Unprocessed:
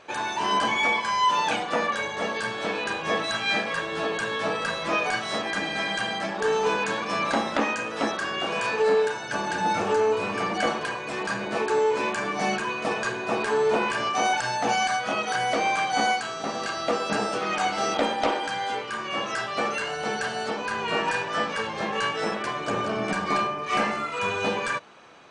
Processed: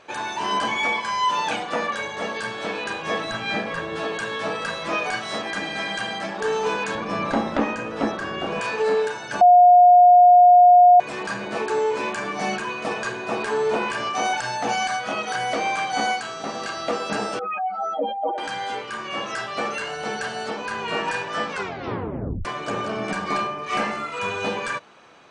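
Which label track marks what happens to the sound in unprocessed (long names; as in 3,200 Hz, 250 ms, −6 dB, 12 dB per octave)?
3.240000	3.960000	spectral tilt −2 dB per octave
6.950000	8.610000	spectral tilt −2.5 dB per octave
9.410000	11.000000	beep over 715 Hz −8 dBFS
17.390000	18.380000	expanding power law on the bin magnitudes exponent 3.4
21.510000	21.510000	tape stop 0.94 s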